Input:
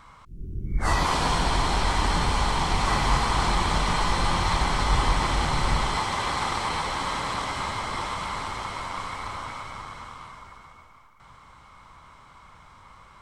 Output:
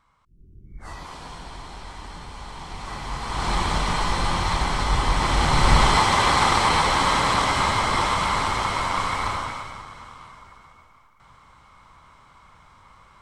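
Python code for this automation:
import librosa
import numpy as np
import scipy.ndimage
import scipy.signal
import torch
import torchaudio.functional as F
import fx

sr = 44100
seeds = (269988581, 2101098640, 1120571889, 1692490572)

y = fx.gain(x, sr, db=fx.line((2.3, -15.0), (3.17, -8.5), (3.54, 0.5), (5.04, 0.5), (5.82, 8.5), (9.28, 8.5), (9.86, -1.5)))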